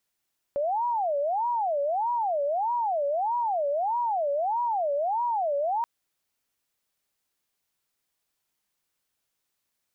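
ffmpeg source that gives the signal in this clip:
ffmpeg -f lavfi -i "aevalsrc='0.0668*sin(2*PI*(765*t-201/(2*PI*1.6)*sin(2*PI*1.6*t)))':duration=5.28:sample_rate=44100" out.wav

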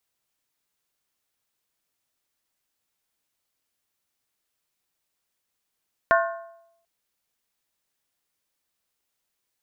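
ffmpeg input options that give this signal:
ffmpeg -f lavfi -i "aevalsrc='0.158*pow(10,-3*t/0.8)*sin(2*PI*672*t)+0.126*pow(10,-3*t/0.634)*sin(2*PI*1071.2*t)+0.1*pow(10,-3*t/0.547)*sin(2*PI*1435.4*t)+0.0794*pow(10,-3*t/0.528)*sin(2*PI*1542.9*t)+0.0631*pow(10,-3*t/0.491)*sin(2*PI*1782.8*t)':duration=0.74:sample_rate=44100" out.wav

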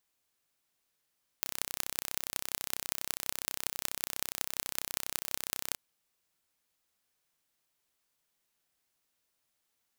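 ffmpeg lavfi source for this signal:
ffmpeg -f lavfi -i "aevalsrc='0.75*eq(mod(n,1370),0)*(0.5+0.5*eq(mod(n,8220),0))':duration=4.32:sample_rate=44100" out.wav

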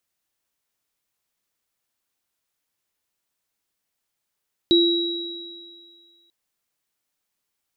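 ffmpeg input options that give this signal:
ffmpeg -f lavfi -i "aevalsrc='0.224*pow(10,-3*t/1.65)*sin(2*PI*341*t)+0.158*pow(10,-3*t/2.22)*sin(2*PI*3870*t)':duration=1.59:sample_rate=44100" out.wav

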